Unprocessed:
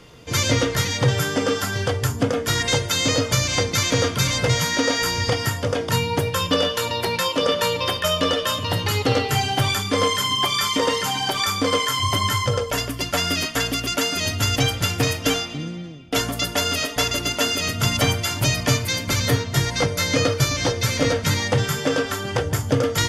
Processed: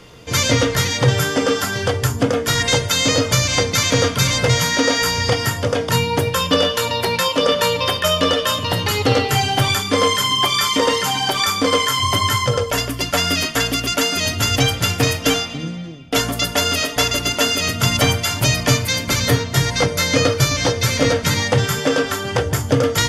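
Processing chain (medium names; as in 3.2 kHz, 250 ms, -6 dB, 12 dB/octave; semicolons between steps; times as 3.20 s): hum notches 50/100/150/200/250/300/350 Hz; trim +4 dB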